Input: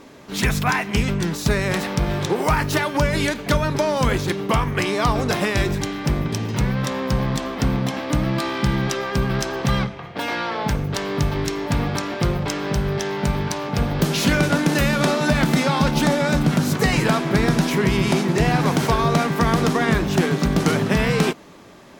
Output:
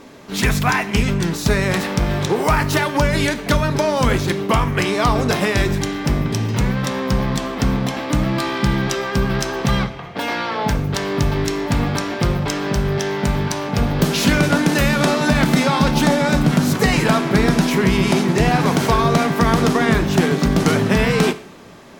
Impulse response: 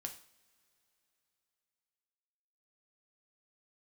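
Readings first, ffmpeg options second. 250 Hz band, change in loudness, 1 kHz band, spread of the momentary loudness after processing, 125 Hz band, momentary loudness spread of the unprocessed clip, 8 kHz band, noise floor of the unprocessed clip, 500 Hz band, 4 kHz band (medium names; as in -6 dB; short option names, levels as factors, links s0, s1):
+3.0 dB, +2.5 dB, +3.0 dB, 5 LU, +2.0 dB, 5 LU, +2.5 dB, -36 dBFS, +2.5 dB, +2.5 dB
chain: -filter_complex "[0:a]asplit=2[s0][s1];[1:a]atrim=start_sample=2205,asetrate=34839,aresample=44100[s2];[s1][s2]afir=irnorm=-1:irlink=0,volume=0.841[s3];[s0][s3]amix=inputs=2:normalize=0,volume=0.841"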